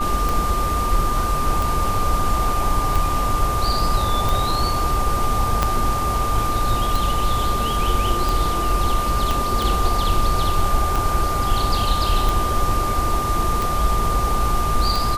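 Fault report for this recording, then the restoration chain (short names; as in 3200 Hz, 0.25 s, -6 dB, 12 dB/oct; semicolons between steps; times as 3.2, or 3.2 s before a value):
tick 45 rpm
tone 1200 Hz -22 dBFS
5.63 pop -4 dBFS
9.31 pop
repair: de-click; notch 1200 Hz, Q 30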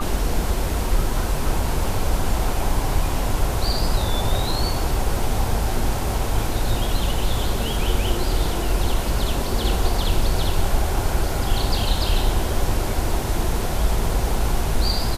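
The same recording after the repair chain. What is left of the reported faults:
5.63 pop
9.31 pop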